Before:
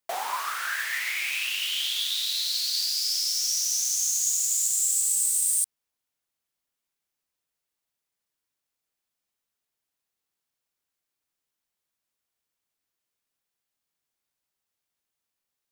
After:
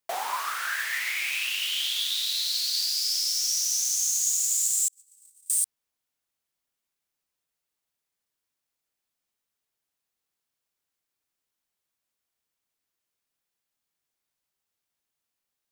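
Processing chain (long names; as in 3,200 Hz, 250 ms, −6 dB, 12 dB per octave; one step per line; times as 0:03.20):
0:04.88–0:05.50: noise gate −19 dBFS, range −43 dB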